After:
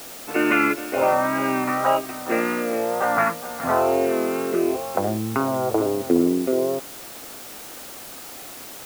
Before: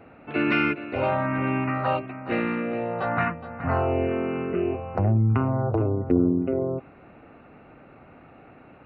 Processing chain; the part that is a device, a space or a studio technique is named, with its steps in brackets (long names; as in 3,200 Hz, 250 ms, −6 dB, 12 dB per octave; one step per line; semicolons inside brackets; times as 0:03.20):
wax cylinder (band-pass filter 310–2,200 Hz; tape wow and flutter; white noise bed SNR 16 dB)
level +6 dB